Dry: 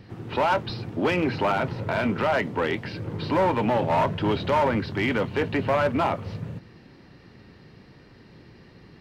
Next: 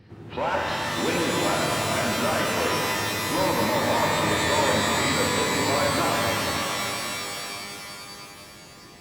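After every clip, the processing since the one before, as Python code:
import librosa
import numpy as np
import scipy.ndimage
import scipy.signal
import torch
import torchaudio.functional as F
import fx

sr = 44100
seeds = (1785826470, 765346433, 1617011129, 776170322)

y = fx.rev_shimmer(x, sr, seeds[0], rt60_s=3.4, semitones=12, shimmer_db=-2, drr_db=-2.0)
y = y * librosa.db_to_amplitude(-5.5)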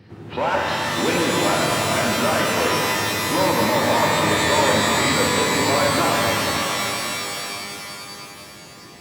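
y = scipy.signal.sosfilt(scipy.signal.butter(2, 79.0, 'highpass', fs=sr, output='sos'), x)
y = y * librosa.db_to_amplitude(4.5)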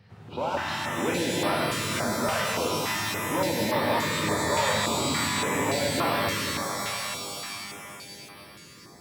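y = fx.filter_held_notch(x, sr, hz=3.5, low_hz=310.0, high_hz=6900.0)
y = y * librosa.db_to_amplitude(-6.0)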